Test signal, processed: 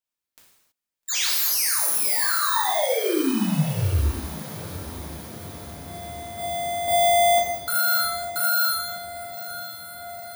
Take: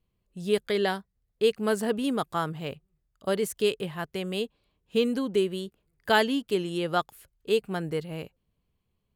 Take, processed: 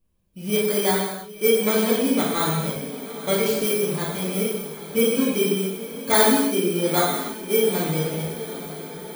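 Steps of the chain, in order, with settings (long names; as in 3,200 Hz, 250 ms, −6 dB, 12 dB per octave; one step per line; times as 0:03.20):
samples in bit-reversed order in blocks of 16 samples
feedback delay with all-pass diffusion 886 ms, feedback 67%, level −14 dB
reverb whose tail is shaped and stops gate 350 ms falling, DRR −6 dB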